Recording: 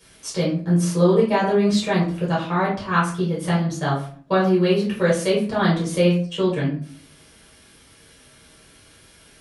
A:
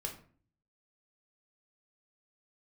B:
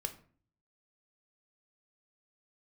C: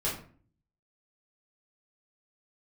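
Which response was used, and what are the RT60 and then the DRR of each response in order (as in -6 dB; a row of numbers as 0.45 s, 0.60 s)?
C; 0.45 s, 0.45 s, 0.45 s; 1.5 dB, 7.0 dB, -7.5 dB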